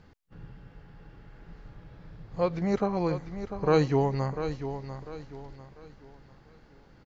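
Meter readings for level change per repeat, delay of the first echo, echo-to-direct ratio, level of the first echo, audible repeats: -9.5 dB, 0.696 s, -9.5 dB, -10.0 dB, 3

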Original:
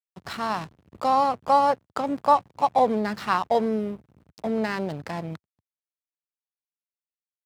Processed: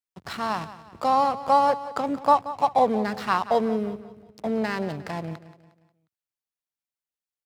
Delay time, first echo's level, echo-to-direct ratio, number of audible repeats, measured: 0.179 s, -15.0 dB, -14.0 dB, 3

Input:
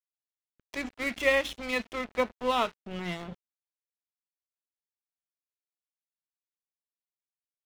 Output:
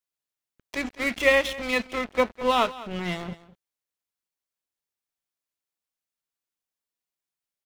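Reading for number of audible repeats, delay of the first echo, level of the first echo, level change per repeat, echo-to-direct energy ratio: 1, 0.204 s, -17.5 dB, no steady repeat, -17.5 dB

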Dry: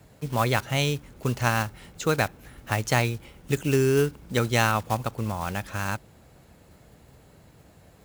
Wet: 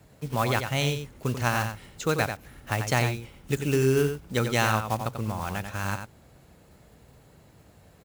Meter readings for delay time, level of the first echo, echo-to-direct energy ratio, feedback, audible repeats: 91 ms, -7.5 dB, -7.5 dB, no steady repeat, 1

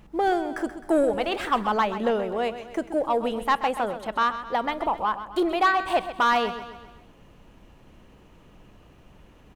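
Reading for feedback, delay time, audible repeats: 50%, 0.13 s, 4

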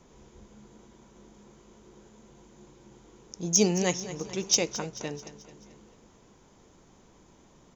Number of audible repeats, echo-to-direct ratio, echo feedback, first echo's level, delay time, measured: 4, -13.0 dB, 51%, -14.5 dB, 0.218 s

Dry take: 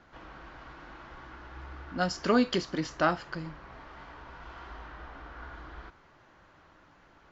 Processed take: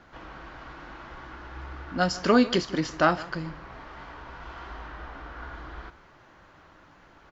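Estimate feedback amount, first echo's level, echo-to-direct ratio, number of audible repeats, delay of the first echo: no steady repeat, -19.0 dB, -19.0 dB, 1, 0.153 s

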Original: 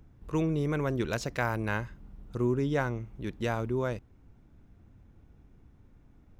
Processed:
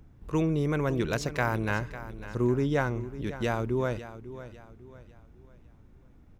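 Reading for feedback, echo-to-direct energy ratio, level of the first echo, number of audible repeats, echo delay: 37%, -13.5 dB, -14.0 dB, 3, 0.55 s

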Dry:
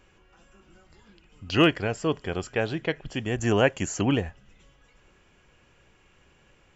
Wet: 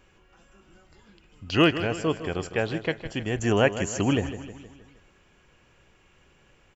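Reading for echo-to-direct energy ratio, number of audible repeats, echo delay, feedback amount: -11.0 dB, 5, 0.157 s, 53%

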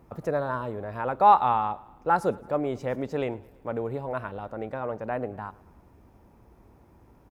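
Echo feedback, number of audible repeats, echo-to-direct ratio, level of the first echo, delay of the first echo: 58%, 3, -22.0 dB, -23.5 dB, 0.11 s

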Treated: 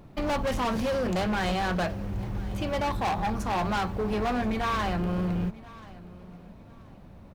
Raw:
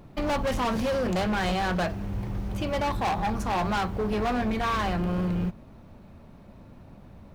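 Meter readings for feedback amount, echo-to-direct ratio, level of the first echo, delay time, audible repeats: 25%, -20.0 dB, -20.5 dB, 1.031 s, 2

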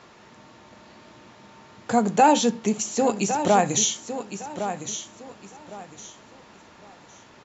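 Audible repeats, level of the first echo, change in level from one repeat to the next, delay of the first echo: 3, -10.0 dB, -11.5 dB, 1.109 s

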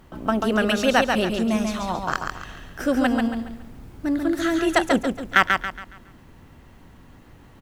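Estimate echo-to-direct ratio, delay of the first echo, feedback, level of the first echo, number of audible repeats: -4.0 dB, 0.139 s, 36%, -4.5 dB, 4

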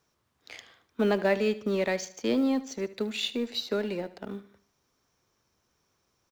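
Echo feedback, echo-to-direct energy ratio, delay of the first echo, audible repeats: 42%, -16.0 dB, 75 ms, 3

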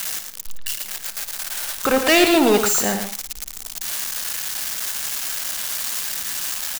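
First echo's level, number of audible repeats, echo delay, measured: -12.5 dB, 3, 57 ms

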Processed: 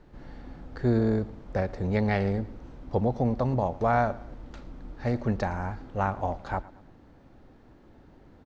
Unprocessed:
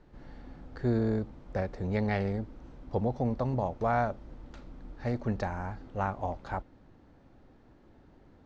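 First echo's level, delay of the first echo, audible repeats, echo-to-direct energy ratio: -20.0 dB, 0.112 s, 2, -19.0 dB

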